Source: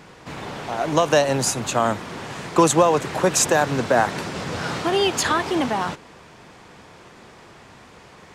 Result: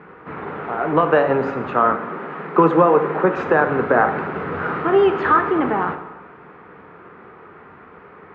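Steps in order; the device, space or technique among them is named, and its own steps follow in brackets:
0:01.92–0:03.37: elliptic high-pass filter 150 Hz
bass cabinet (loudspeaker in its box 76–2,100 Hz, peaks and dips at 110 Hz −9 dB, 420 Hz +7 dB, 640 Hz −4 dB, 1,300 Hz +8 dB)
dense smooth reverb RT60 1.1 s, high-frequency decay 0.8×, DRR 7 dB
level +1 dB

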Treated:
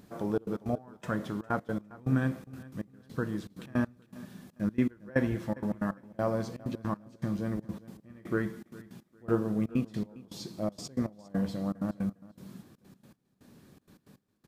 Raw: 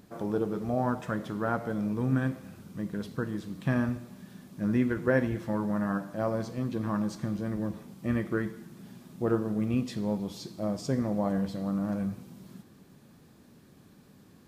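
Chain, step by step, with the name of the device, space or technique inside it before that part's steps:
trance gate with a delay (gate pattern "xxxx.x.x..." 160 BPM −24 dB; repeating echo 405 ms, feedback 24%, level −20 dB)

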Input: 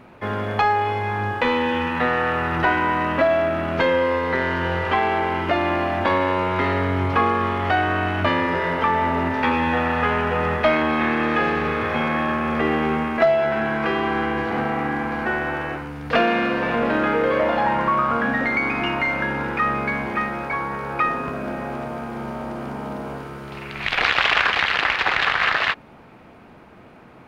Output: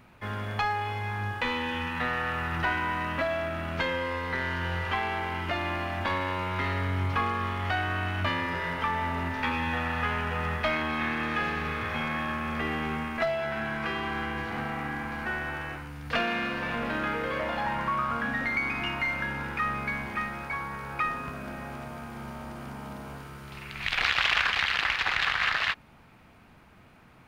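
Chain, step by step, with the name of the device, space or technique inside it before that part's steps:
smiley-face EQ (low-shelf EQ 100 Hz +5 dB; parametric band 430 Hz −8.5 dB 2.1 octaves; high-shelf EQ 5,800 Hz +8 dB)
level −6 dB

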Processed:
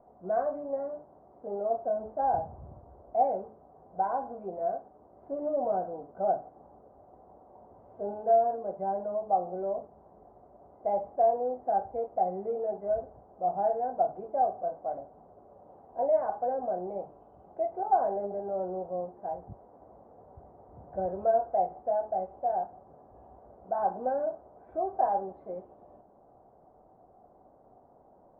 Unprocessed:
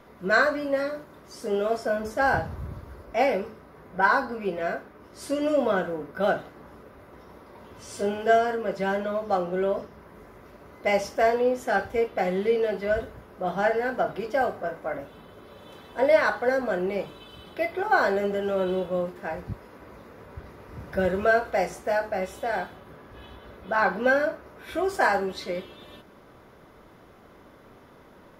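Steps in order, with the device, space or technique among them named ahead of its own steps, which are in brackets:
overdriven synthesiser ladder filter (soft clipping −14.5 dBFS, distortion −18 dB; transistor ladder low-pass 800 Hz, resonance 75%)

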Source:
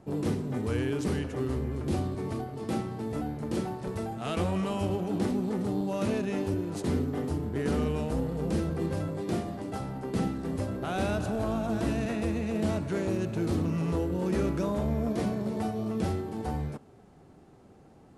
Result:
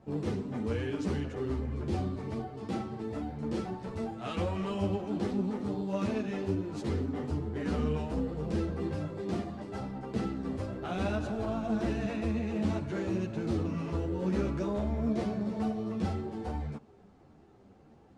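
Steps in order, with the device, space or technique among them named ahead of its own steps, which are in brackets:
string-machine ensemble chorus (string-ensemble chorus; low-pass filter 6,100 Hz 12 dB per octave)

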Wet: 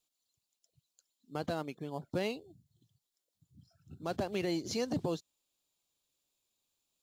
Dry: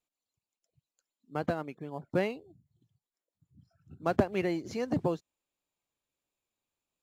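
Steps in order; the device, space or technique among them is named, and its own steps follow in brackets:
over-bright horn tweeter (high shelf with overshoot 2,800 Hz +7.5 dB, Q 1.5; brickwall limiter −24 dBFS, peak gain reduction 12 dB)

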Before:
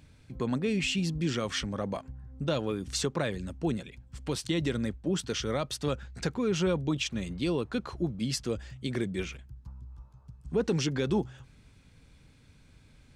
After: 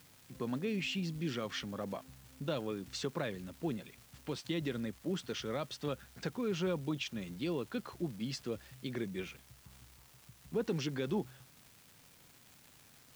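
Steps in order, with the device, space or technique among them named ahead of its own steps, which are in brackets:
78 rpm shellac record (band-pass filter 120–5,200 Hz; surface crackle 380 per second −41 dBFS; white noise bed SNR 25 dB)
level −6.5 dB

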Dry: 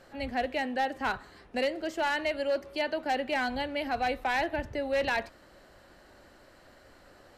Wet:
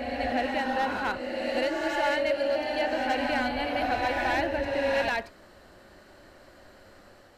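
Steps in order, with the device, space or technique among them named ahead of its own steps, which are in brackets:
reverse reverb (reversed playback; convolution reverb RT60 2.4 s, pre-delay 68 ms, DRR 0 dB; reversed playback)

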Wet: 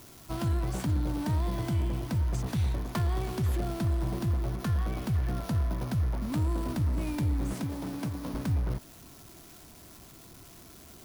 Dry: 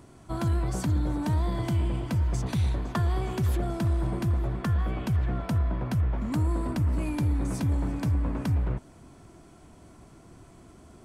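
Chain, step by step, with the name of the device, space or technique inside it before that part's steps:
0:07.53–0:08.34: high-pass filter 150 Hz 12 dB per octave
budget class-D amplifier (gap after every zero crossing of 0.19 ms; spike at every zero crossing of −31.5 dBFS)
level −2.5 dB

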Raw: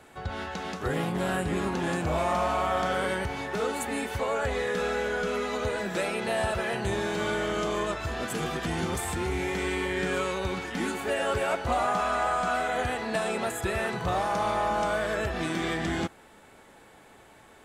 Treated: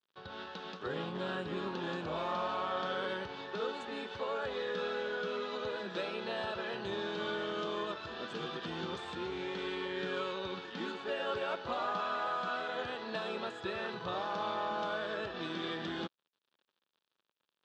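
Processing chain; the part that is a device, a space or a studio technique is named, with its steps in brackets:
blown loudspeaker (dead-zone distortion −46.5 dBFS; loudspeaker in its box 210–4,600 Hz, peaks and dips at 270 Hz −5 dB, 720 Hz −8 dB, 2,100 Hz −10 dB, 3,600 Hz +5 dB)
level −5 dB

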